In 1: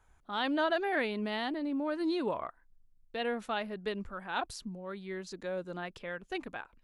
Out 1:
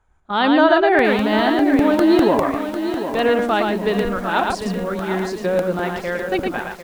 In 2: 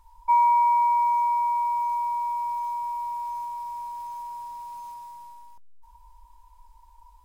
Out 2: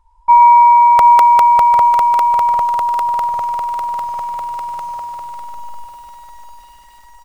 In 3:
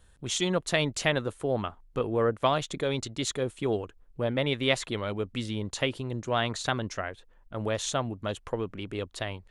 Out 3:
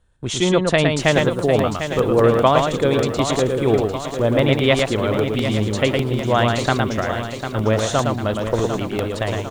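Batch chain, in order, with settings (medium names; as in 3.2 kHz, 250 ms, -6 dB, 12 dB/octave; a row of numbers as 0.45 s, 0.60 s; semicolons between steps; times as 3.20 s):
delay 112 ms -4 dB; gate -44 dBFS, range -13 dB; resampled via 22.05 kHz; treble shelf 2.1 kHz -7.5 dB; crackling interface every 0.20 s, samples 64, repeat, from 0.99 s; bit-crushed delay 749 ms, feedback 55%, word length 9-bit, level -9 dB; peak normalisation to -1.5 dBFS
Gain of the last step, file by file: +16.5 dB, +13.0 dB, +10.5 dB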